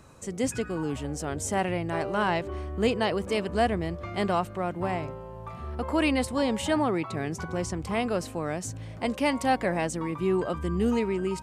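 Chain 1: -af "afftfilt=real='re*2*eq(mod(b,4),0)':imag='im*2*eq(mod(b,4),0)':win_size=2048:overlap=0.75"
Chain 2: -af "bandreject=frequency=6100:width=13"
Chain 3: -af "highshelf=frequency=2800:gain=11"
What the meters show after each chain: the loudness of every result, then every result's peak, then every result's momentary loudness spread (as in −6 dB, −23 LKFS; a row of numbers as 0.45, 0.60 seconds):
−30.5, −28.5, −27.0 LKFS; −11.0, −11.5, −9.0 dBFS; 9, 7, 7 LU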